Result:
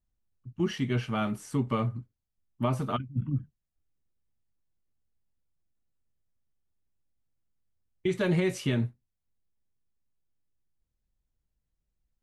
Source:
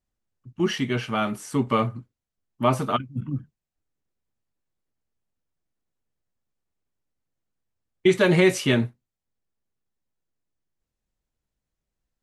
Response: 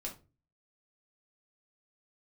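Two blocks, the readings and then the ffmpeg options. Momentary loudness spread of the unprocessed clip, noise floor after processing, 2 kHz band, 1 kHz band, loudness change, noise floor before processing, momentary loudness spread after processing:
13 LU, -83 dBFS, -10.5 dB, -8.5 dB, -6.5 dB, under -85 dBFS, 7 LU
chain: -af "lowshelf=f=170:g=12,alimiter=limit=0.282:level=0:latency=1:release=276,volume=0.447"

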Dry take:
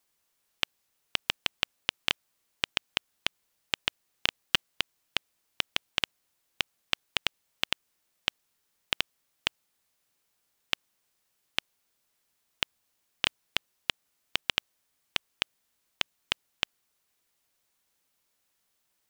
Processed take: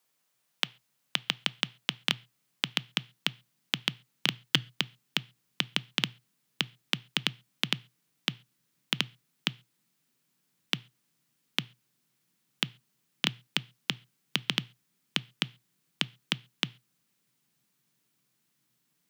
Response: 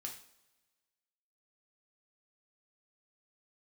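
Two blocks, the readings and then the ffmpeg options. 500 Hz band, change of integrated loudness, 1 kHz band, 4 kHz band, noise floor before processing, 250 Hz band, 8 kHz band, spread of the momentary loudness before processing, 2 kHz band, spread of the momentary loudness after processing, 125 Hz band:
-0.5 dB, +0.5 dB, -1.5 dB, +0.5 dB, -77 dBFS, +9.0 dB, 0.0 dB, 5 LU, -0.5 dB, 5 LU, +11.0 dB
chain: -filter_complex "[0:a]afreqshift=120,asubboost=boost=7.5:cutoff=210,asplit=2[s0][s1];[1:a]atrim=start_sample=2205,afade=t=out:st=0.19:d=0.01,atrim=end_sample=8820,lowpass=4900[s2];[s1][s2]afir=irnorm=-1:irlink=0,volume=0.2[s3];[s0][s3]amix=inputs=2:normalize=0"

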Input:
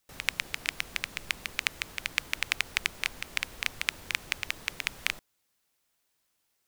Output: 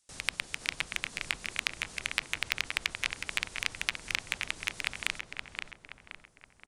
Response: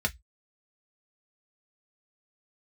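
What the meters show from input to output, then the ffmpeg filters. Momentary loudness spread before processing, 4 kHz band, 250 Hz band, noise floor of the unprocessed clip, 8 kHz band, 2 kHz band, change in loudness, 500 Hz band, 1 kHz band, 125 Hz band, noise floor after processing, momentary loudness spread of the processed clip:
4 LU, -1.0 dB, -0.5 dB, -77 dBFS, -1.0 dB, -1.0 dB, -1.5 dB, -0.5 dB, -0.5 dB, 0.0 dB, -63 dBFS, 10 LU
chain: -filter_complex "[0:a]aresample=22050,aresample=44100,acrossover=split=3900[s0][s1];[s1]acompressor=threshold=0.00794:ratio=4:attack=1:release=60[s2];[s0][s2]amix=inputs=2:normalize=0,agate=range=0.501:threshold=0.0112:ratio=16:detection=peak,acompressor=threshold=0.0158:ratio=2,bass=f=250:g=1,treble=f=4000:g=11,asplit=2[s3][s4];[s4]adelay=523,lowpass=f=2600:p=1,volume=0.668,asplit=2[s5][s6];[s6]adelay=523,lowpass=f=2600:p=1,volume=0.51,asplit=2[s7][s8];[s8]adelay=523,lowpass=f=2600:p=1,volume=0.51,asplit=2[s9][s10];[s10]adelay=523,lowpass=f=2600:p=1,volume=0.51,asplit=2[s11][s12];[s12]adelay=523,lowpass=f=2600:p=1,volume=0.51,asplit=2[s13][s14];[s14]adelay=523,lowpass=f=2600:p=1,volume=0.51,asplit=2[s15][s16];[s16]adelay=523,lowpass=f=2600:p=1,volume=0.51[s17];[s5][s7][s9][s11][s13][s15][s17]amix=inputs=7:normalize=0[s18];[s3][s18]amix=inputs=2:normalize=0,volume=1.5"

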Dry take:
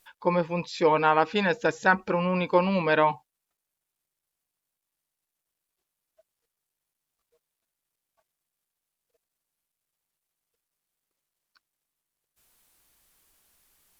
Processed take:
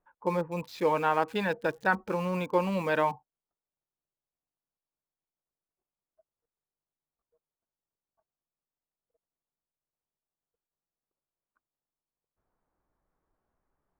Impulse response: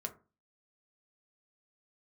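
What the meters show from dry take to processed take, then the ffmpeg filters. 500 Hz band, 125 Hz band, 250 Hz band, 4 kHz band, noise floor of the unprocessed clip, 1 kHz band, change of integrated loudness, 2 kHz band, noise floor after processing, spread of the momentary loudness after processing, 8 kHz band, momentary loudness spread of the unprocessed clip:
-4.5 dB, -4.5 dB, -4.5 dB, -7.5 dB, under -85 dBFS, -5.0 dB, -5.0 dB, -5.5 dB, under -85 dBFS, 5 LU, no reading, 5 LU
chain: -filter_complex "[0:a]highshelf=f=4300:g=-7,acrossover=split=560|1400[s0][s1][s2];[s2]aeval=exprs='val(0)*gte(abs(val(0)),0.00708)':c=same[s3];[s0][s1][s3]amix=inputs=3:normalize=0,volume=0.596"

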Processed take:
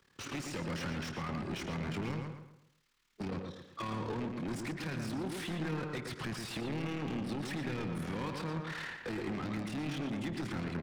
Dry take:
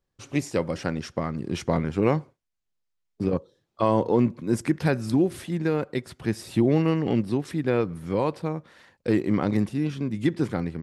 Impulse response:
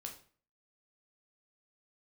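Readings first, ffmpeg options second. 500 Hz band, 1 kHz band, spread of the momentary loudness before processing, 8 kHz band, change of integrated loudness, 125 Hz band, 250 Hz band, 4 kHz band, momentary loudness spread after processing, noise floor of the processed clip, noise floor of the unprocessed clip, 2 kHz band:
-16.0 dB, -10.5 dB, 8 LU, -6.0 dB, -12.5 dB, -11.0 dB, -13.0 dB, -2.5 dB, 4 LU, -70 dBFS, -79 dBFS, -5.0 dB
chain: -filter_complex "[0:a]acrossover=split=170|3000[s0][s1][s2];[s1]acompressor=threshold=0.0447:ratio=6[s3];[s0][s3][s2]amix=inputs=3:normalize=0,equalizer=f=630:w=1.2:g=-14.5,acompressor=threshold=0.0112:ratio=4,tremolo=f=37:d=0.857,asplit=2[s4][s5];[s5]highpass=f=720:p=1,volume=79.4,asoftclip=type=tanh:threshold=0.0531[s6];[s4][s6]amix=inputs=2:normalize=0,lowpass=f=2000:p=1,volume=0.501,asplit=2[s7][s8];[s8]adelay=120,lowpass=f=3700:p=1,volume=0.562,asplit=2[s9][s10];[s10]adelay=120,lowpass=f=3700:p=1,volume=0.38,asplit=2[s11][s12];[s12]adelay=120,lowpass=f=3700:p=1,volume=0.38,asplit=2[s13][s14];[s14]adelay=120,lowpass=f=3700:p=1,volume=0.38,asplit=2[s15][s16];[s16]adelay=120,lowpass=f=3700:p=1,volume=0.38[s17];[s9][s11][s13][s15][s17]amix=inputs=5:normalize=0[s18];[s7][s18]amix=inputs=2:normalize=0,volume=0.631"

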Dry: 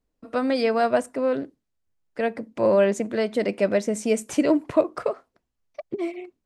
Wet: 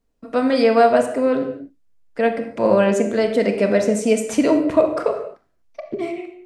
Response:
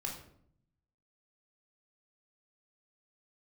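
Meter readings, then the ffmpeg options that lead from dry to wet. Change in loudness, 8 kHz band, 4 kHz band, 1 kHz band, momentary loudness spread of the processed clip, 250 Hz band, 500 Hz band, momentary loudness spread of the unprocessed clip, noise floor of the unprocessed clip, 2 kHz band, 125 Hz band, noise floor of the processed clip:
+5.5 dB, +4.5 dB, +4.5 dB, +7.0 dB, 13 LU, +5.5 dB, +5.5 dB, 11 LU, -79 dBFS, +5.0 dB, +6.5 dB, -64 dBFS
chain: -filter_complex "[0:a]asplit=2[s0][s1];[1:a]atrim=start_sample=2205,atrim=end_sample=6174,asetrate=24255,aresample=44100[s2];[s1][s2]afir=irnorm=-1:irlink=0,volume=0.631[s3];[s0][s3]amix=inputs=2:normalize=0"

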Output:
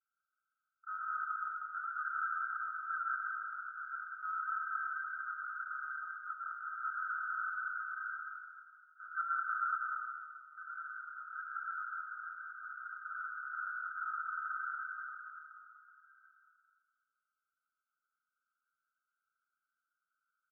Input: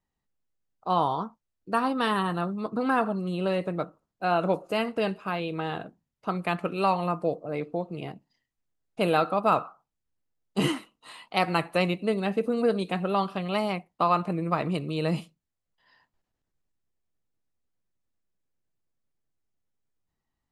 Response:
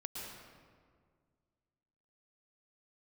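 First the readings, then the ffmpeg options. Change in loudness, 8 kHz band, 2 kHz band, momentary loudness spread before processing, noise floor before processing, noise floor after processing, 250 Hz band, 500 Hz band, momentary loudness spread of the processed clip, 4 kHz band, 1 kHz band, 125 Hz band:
-11.5 dB, under -25 dB, -2.0 dB, 10 LU, -84 dBFS, under -85 dBFS, under -40 dB, under -40 dB, 10 LU, under -40 dB, -10.0 dB, under -40 dB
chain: -filter_complex "[0:a]aecho=1:1:5.8:0.93,acompressor=threshold=0.02:ratio=2,tremolo=f=290:d=0.974,acrusher=samples=15:mix=1:aa=0.000001:lfo=1:lforange=15:lforate=0.3,asoftclip=type=tanh:threshold=0.0211,asuperpass=centerf=1400:order=20:qfactor=4.2,aecho=1:1:190|313.5|393.8|446|479.9:0.631|0.398|0.251|0.158|0.1[s0];[1:a]atrim=start_sample=2205[s1];[s0][s1]afir=irnorm=-1:irlink=0,volume=5.31"

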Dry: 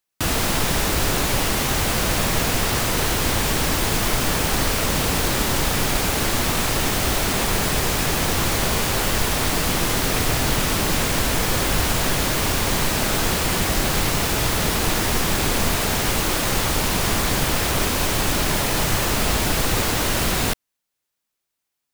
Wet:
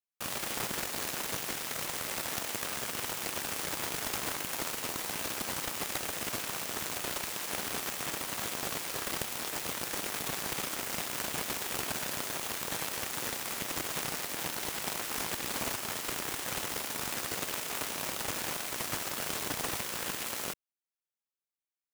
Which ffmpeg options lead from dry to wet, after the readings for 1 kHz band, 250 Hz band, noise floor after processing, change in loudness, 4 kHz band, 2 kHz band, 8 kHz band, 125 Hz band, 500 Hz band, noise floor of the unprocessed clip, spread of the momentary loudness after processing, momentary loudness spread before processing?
-14.5 dB, -18.5 dB, under -85 dBFS, -13.5 dB, -14.0 dB, -13.5 dB, -12.0 dB, -23.5 dB, -16.0 dB, -80 dBFS, 1 LU, 0 LU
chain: -af "aeval=exprs='0.473*(cos(1*acos(clip(val(0)/0.473,-1,1)))-cos(1*PI/2))+0.119*(cos(3*acos(clip(val(0)/0.473,-1,1)))-cos(3*PI/2))+0.0376*(cos(7*acos(clip(val(0)/0.473,-1,1)))-cos(7*PI/2))+0.0422*(cos(8*acos(clip(val(0)/0.473,-1,1)))-cos(8*PI/2))':c=same,highpass=f=200:p=1,equalizer=f=4300:t=o:w=0.77:g=-2,volume=0.422"

